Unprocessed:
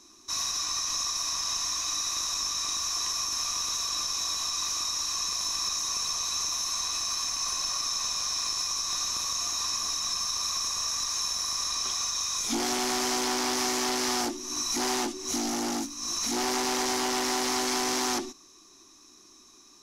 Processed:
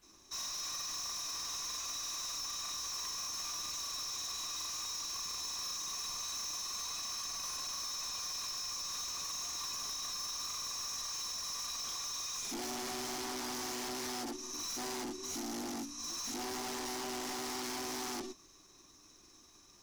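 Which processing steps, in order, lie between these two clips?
granular cloud 100 ms, grains 20 per second, spray 32 ms, pitch spread up and down by 0 semitones
background noise pink −65 dBFS
gain into a clipping stage and back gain 32.5 dB
level −5 dB

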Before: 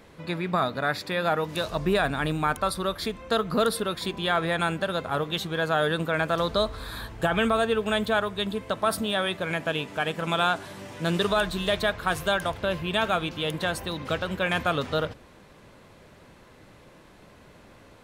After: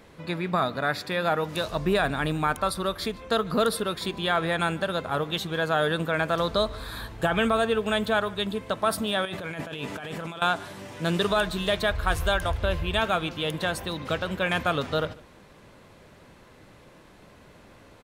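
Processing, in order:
0:09.25–0:10.42: compressor whose output falls as the input rises −35 dBFS, ratio −1
0:11.90–0:13.00: low shelf with overshoot 100 Hz +14 dB, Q 1.5
single-tap delay 147 ms −23.5 dB

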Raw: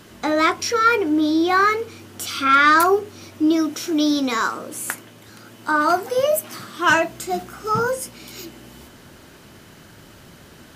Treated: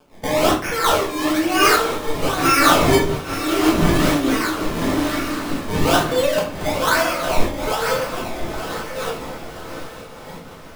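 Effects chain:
feedback delay that plays each chunk backwards 650 ms, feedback 50%, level −6 dB
0:06.27–0:07.82: high-pass filter 500 Hz
in parallel at −1.5 dB: downward compressor, threshold −28 dBFS, peak gain reduction 17 dB
on the sum: sample-and-hold swept by an LFO 22×, swing 100% 1.1 Hz
dead-zone distortion −39.5 dBFS
feedback delay with all-pass diffusion 958 ms, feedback 46%, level −11 dB
rectangular room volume 120 cubic metres, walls mixed, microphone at 1.5 metres
amplitude modulation by smooth noise, depth 65%
level −3.5 dB

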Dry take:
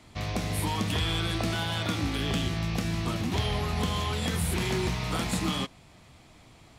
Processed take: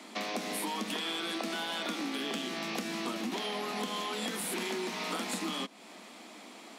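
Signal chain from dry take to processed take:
Butterworth high-pass 200 Hz 72 dB per octave
downward compressor 6 to 1, threshold −40 dBFS, peak gain reduction 13 dB
level +7 dB

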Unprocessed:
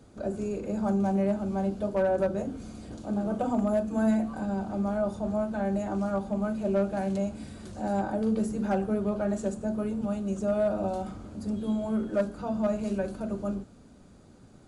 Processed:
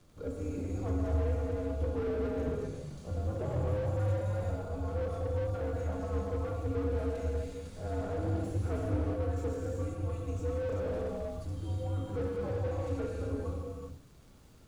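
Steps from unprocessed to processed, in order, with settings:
frequency shifter −120 Hz
surface crackle 32 per second −37 dBFS
reverb whose tail is shaped and stops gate 430 ms flat, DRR −2 dB
slew-rate limiting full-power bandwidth 28 Hz
level −7.5 dB

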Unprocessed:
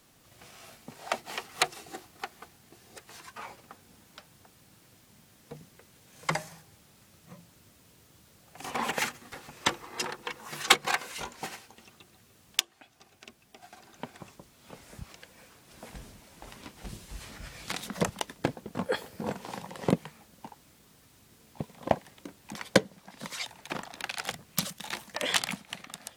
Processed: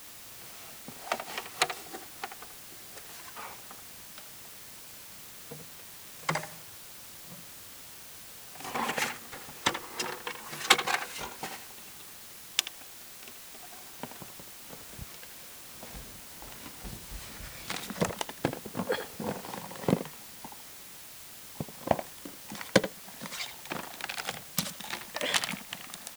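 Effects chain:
in parallel at −7.5 dB: bit-depth reduction 6 bits, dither triangular
on the sum: far-end echo of a speakerphone 80 ms, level −9 dB
level −4 dB

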